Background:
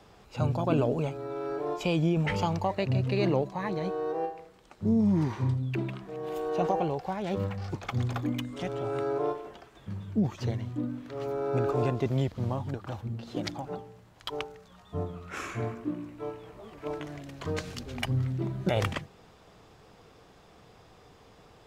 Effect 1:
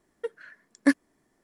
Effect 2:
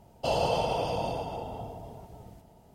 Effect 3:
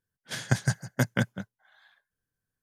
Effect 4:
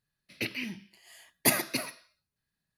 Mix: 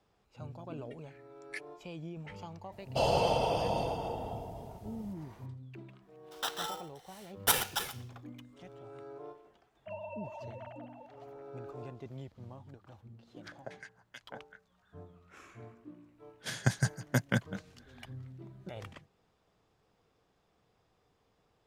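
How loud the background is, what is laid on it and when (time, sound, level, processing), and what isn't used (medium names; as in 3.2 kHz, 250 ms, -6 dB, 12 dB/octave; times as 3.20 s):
background -17.5 dB
0.67 s: add 1 -3 dB + ladder high-pass 2.2 kHz, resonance 75%
2.72 s: add 2 -1 dB
6.02 s: add 4 -2.5 dB + polarity switched at an audio rate 1.1 kHz
9.63 s: add 2 -16.5 dB + formants replaced by sine waves
13.15 s: add 3 -5.5 dB + step-sequenced band-pass 5.4 Hz 460–2900 Hz
16.15 s: add 3 -3.5 dB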